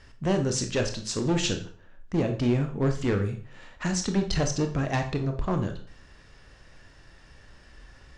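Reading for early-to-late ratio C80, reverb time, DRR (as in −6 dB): 14.5 dB, 0.45 s, 5.0 dB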